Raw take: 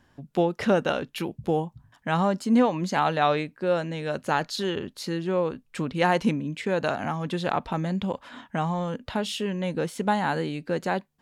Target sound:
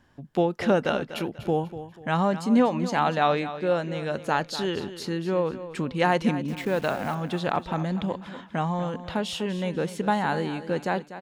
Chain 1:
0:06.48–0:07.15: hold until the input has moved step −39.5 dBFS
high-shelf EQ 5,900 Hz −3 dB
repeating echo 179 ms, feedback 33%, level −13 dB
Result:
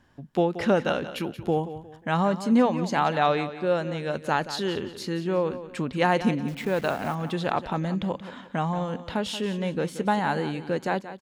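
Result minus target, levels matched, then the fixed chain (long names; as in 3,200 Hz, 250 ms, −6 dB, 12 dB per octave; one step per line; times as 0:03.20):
echo 65 ms early
0:06.48–0:07.15: hold until the input has moved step −39.5 dBFS
high-shelf EQ 5,900 Hz −3 dB
repeating echo 244 ms, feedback 33%, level −13 dB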